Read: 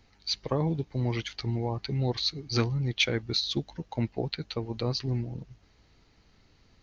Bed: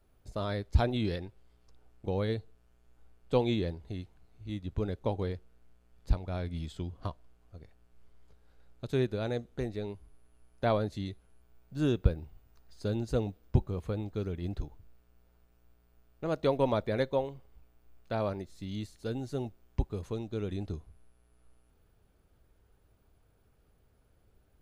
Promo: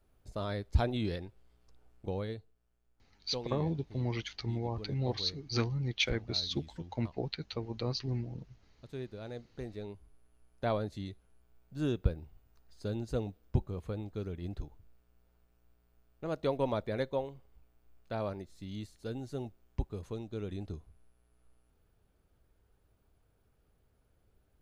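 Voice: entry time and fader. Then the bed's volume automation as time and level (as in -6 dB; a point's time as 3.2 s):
3.00 s, -5.0 dB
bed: 2.05 s -2.5 dB
2.54 s -12.5 dB
9.01 s -12.5 dB
10 s -4 dB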